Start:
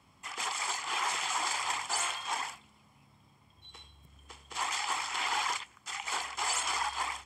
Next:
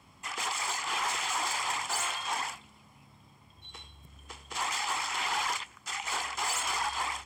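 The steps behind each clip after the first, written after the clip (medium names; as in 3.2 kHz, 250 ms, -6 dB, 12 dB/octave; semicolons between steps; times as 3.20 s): in parallel at -2.5 dB: peak limiter -28 dBFS, peak gain reduction 9 dB; on the sum: saturation -23 dBFS, distortion -18 dB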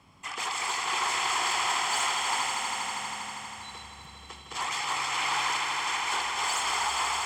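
treble shelf 10 kHz -6.5 dB; on a send: echo with a slow build-up 80 ms, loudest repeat 5, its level -8 dB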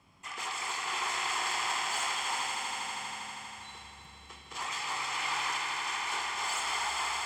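on a send at -4 dB: frequency weighting A + reverberation RT60 0.65 s, pre-delay 3 ms; on the sum: trim -5.5 dB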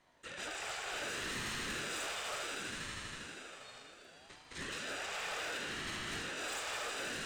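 overload inside the chain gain 29.5 dB; ring modulator with a swept carrier 580 Hz, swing 45%, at 0.67 Hz; trim -3.5 dB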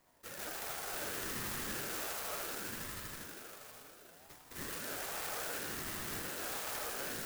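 sampling jitter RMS 0.093 ms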